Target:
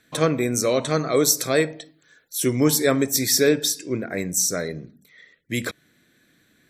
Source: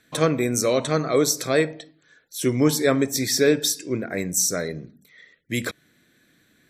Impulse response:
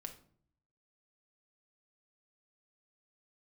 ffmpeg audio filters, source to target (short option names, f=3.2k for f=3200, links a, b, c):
-filter_complex "[0:a]asettb=1/sr,asplit=3[a][b][c];[a]atrim=end=0.874[d];[b]atrim=start=0.87:end=3.49,asetpts=PTS-STARTPTS,afade=t=in:d=0.004:c=qsin,afade=t=out:st=2.616:d=0.004:c=qsin,highshelf=f=8k:g=10[e];[c]atrim=start=3.486[f];[d][e]acrossfade=d=0.004:c1=hsin:c2=qsin[g];[g][f]acrossfade=d=0.004:c1=qsin:c2=hsin"